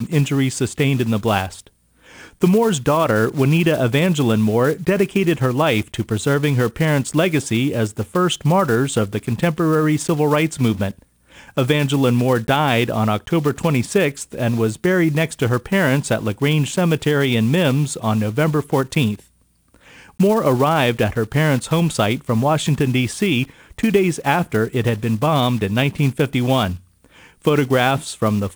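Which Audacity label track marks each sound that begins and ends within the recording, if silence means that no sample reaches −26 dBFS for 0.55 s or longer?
2.420000	10.910000	sound
11.570000	19.150000	sound
20.200000	26.760000	sound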